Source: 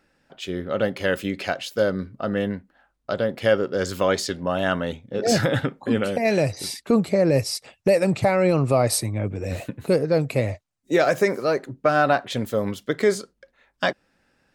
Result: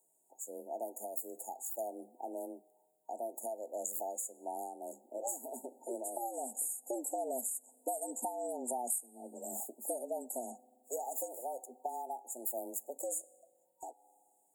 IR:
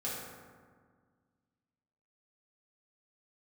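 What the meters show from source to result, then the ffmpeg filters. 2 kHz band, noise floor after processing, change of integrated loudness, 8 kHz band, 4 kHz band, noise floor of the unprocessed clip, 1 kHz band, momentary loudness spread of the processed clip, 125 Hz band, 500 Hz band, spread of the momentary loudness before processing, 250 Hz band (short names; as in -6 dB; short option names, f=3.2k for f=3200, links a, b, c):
under -40 dB, -74 dBFS, -16.5 dB, -4.5 dB, under -40 dB, -70 dBFS, -13.0 dB, 10 LU, under -40 dB, -20.0 dB, 10 LU, -24.0 dB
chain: -filter_complex "[0:a]afreqshift=120,aderivative,asplit=2[a][b];[1:a]atrim=start_sample=2205[c];[b][c]afir=irnorm=-1:irlink=0,volume=-26.5dB[d];[a][d]amix=inputs=2:normalize=0,acompressor=threshold=-39dB:ratio=16,afftfilt=real='re*(1-between(b*sr/4096,930,6700))':imag='im*(1-between(b*sr/4096,930,6700))':win_size=4096:overlap=0.75,volume=7dB"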